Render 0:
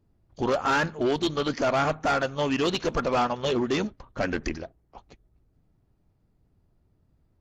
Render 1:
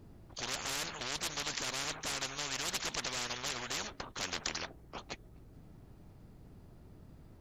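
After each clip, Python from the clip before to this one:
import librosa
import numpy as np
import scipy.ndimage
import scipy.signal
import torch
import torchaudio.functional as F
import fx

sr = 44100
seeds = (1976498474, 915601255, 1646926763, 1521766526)

y = fx.spectral_comp(x, sr, ratio=10.0)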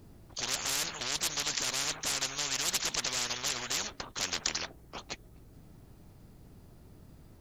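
y = fx.high_shelf(x, sr, hz=4100.0, db=8.5)
y = y * librosa.db_to_amplitude(1.0)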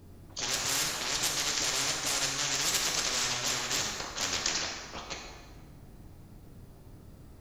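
y = fx.rev_plate(x, sr, seeds[0], rt60_s=1.6, hf_ratio=0.7, predelay_ms=0, drr_db=-0.5)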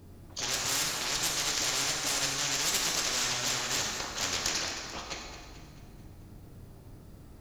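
y = fx.diode_clip(x, sr, knee_db=-23.0)
y = fx.echo_feedback(y, sr, ms=219, feedback_pct=50, wet_db=-12)
y = y * librosa.db_to_amplitude(1.0)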